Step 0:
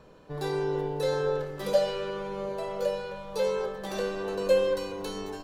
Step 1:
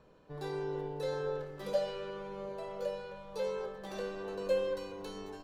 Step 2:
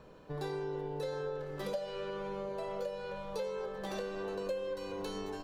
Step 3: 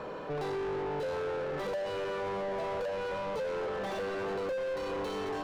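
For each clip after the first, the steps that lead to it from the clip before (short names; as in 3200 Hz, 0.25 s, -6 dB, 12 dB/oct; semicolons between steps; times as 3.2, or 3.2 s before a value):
high shelf 6400 Hz -5.5 dB; gain -8 dB
compressor 5:1, threshold -42 dBFS, peak gain reduction 14.5 dB; gain +6.5 dB
overdrive pedal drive 32 dB, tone 1200 Hz, clips at -25 dBFS; gain -2 dB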